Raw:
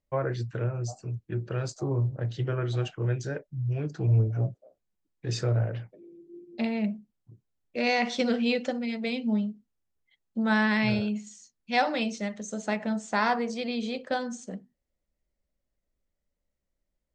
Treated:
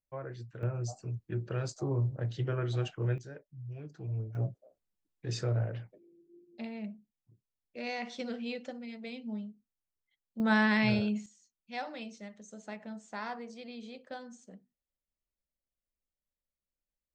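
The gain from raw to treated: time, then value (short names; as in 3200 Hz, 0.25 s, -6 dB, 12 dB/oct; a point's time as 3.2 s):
-12.5 dB
from 0.63 s -3.5 dB
from 3.18 s -13.5 dB
from 4.35 s -5 dB
from 5.98 s -12 dB
from 10.4 s -2 dB
from 11.26 s -14 dB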